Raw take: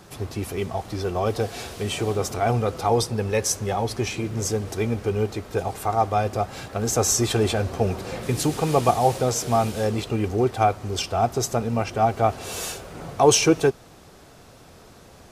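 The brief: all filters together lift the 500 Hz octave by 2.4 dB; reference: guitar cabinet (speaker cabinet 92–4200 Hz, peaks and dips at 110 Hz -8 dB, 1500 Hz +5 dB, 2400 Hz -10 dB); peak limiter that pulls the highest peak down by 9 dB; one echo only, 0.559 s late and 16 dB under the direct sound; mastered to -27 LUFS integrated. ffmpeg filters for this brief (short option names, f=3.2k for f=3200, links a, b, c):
-af "equalizer=f=500:t=o:g=3,alimiter=limit=-11.5dB:level=0:latency=1,highpass=92,equalizer=f=110:t=q:w=4:g=-8,equalizer=f=1.5k:t=q:w=4:g=5,equalizer=f=2.4k:t=q:w=4:g=-10,lowpass=f=4.2k:w=0.5412,lowpass=f=4.2k:w=1.3066,aecho=1:1:559:0.158,volume=-2dB"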